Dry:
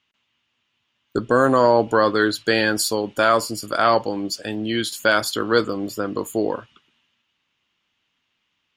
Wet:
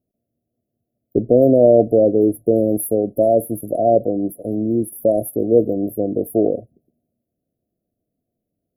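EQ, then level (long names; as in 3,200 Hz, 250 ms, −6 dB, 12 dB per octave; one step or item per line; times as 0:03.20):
linear-phase brick-wall band-stop 740–10,000 Hz
+5.5 dB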